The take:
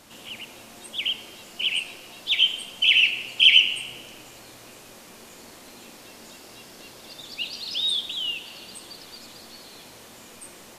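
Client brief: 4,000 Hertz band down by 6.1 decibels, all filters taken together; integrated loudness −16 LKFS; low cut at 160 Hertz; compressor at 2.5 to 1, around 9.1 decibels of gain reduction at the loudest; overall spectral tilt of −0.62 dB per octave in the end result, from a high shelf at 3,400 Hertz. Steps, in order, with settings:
high-pass filter 160 Hz
high-shelf EQ 3,400 Hz −7 dB
parametric band 4,000 Hz −4.5 dB
downward compressor 2.5 to 1, threshold −30 dBFS
level +17 dB

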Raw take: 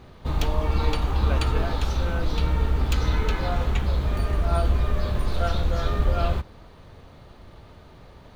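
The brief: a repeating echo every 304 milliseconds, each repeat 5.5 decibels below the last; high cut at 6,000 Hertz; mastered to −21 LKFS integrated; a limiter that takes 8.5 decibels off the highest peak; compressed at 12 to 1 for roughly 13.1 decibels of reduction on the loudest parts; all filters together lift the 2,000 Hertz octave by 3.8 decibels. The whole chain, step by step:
low-pass filter 6,000 Hz
parametric band 2,000 Hz +5 dB
downward compressor 12 to 1, threshold −30 dBFS
brickwall limiter −30.5 dBFS
repeating echo 304 ms, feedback 53%, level −5.5 dB
level +19 dB

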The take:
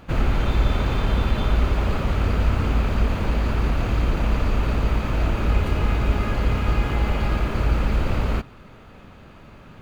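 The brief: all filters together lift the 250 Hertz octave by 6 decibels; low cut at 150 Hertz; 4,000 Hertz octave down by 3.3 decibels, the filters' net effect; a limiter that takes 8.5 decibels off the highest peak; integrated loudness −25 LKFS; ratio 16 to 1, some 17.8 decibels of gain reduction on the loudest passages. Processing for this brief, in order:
high-pass filter 150 Hz
parametric band 250 Hz +8.5 dB
parametric band 4,000 Hz −4.5 dB
downward compressor 16 to 1, threshold −38 dBFS
level +20.5 dB
brickwall limiter −16 dBFS

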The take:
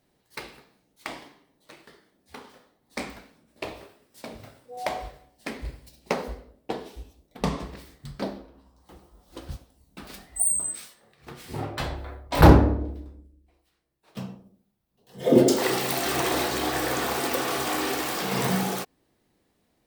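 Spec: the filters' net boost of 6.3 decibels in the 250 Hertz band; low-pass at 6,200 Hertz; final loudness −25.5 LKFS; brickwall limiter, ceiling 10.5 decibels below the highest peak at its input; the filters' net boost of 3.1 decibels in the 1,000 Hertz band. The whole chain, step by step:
low-pass filter 6,200 Hz
parametric band 250 Hz +8 dB
parametric band 1,000 Hz +3.5 dB
level +0.5 dB
brickwall limiter −8.5 dBFS

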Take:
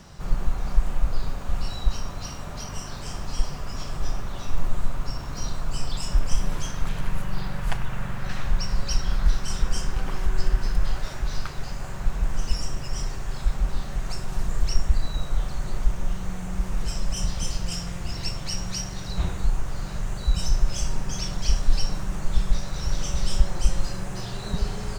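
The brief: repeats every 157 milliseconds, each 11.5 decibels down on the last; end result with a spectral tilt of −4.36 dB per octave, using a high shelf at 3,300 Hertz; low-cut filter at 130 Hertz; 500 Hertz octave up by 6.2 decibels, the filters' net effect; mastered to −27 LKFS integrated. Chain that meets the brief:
high-pass filter 130 Hz
parametric band 500 Hz +8 dB
high-shelf EQ 3,300 Hz −4 dB
repeating echo 157 ms, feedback 27%, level −11.5 dB
level +8 dB

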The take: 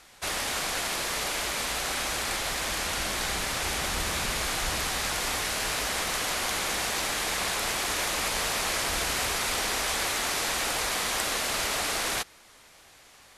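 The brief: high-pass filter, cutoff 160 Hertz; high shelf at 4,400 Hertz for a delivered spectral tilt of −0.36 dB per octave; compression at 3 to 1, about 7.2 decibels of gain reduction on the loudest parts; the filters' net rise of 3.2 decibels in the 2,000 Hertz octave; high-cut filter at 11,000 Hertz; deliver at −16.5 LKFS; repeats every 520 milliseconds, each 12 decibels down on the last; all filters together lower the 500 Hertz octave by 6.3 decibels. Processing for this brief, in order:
high-pass filter 160 Hz
low-pass filter 11,000 Hz
parametric band 500 Hz −8.5 dB
parametric band 2,000 Hz +6 dB
high-shelf EQ 4,400 Hz −8.5 dB
downward compressor 3 to 1, threshold −36 dBFS
repeating echo 520 ms, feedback 25%, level −12 dB
level +18.5 dB

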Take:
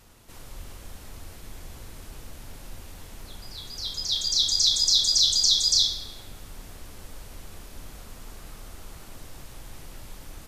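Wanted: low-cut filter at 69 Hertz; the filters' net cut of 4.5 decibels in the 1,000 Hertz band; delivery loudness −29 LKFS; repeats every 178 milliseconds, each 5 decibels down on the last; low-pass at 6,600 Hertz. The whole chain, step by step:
high-pass filter 69 Hz
low-pass filter 6,600 Hz
parametric band 1,000 Hz −6 dB
repeating echo 178 ms, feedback 56%, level −5 dB
level −8.5 dB

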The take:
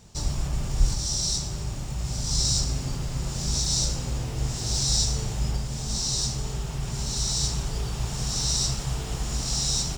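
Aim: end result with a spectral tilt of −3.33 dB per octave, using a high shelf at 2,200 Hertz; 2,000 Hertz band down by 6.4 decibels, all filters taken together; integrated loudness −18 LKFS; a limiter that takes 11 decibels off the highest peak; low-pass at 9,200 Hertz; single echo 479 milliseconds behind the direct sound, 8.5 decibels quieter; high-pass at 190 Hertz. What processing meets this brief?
high-pass filter 190 Hz
low-pass filter 9,200 Hz
parametric band 2,000 Hz −5.5 dB
high-shelf EQ 2,200 Hz −5 dB
brickwall limiter −28 dBFS
single-tap delay 479 ms −8.5 dB
level +18.5 dB

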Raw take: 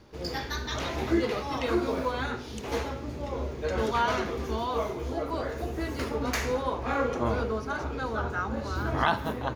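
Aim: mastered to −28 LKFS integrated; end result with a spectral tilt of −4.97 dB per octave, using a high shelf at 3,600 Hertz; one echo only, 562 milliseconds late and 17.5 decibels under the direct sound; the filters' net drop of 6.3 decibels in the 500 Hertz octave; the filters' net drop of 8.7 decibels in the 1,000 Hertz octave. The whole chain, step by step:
parametric band 500 Hz −5.5 dB
parametric band 1,000 Hz −9 dB
high-shelf EQ 3,600 Hz −5 dB
single-tap delay 562 ms −17.5 dB
level +6.5 dB

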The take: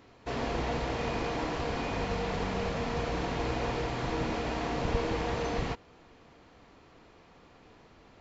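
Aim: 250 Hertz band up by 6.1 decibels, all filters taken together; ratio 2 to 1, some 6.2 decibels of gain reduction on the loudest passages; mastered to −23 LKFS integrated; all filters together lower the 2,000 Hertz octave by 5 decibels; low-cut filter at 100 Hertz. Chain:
high-pass filter 100 Hz
parametric band 250 Hz +8 dB
parametric band 2,000 Hz −6.5 dB
downward compressor 2 to 1, threshold −36 dBFS
level +13 dB

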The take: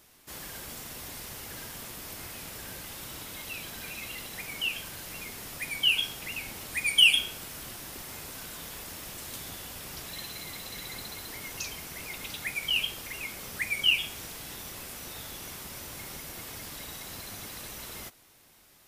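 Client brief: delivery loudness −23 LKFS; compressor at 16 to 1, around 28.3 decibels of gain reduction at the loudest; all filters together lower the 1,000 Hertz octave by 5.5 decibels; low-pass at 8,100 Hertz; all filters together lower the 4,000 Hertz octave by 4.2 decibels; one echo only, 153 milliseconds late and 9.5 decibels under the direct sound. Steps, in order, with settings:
low-pass filter 8,100 Hz
parametric band 1,000 Hz −7 dB
parametric band 4,000 Hz −6 dB
downward compressor 16 to 1, threshold −47 dBFS
single-tap delay 153 ms −9.5 dB
level +26 dB

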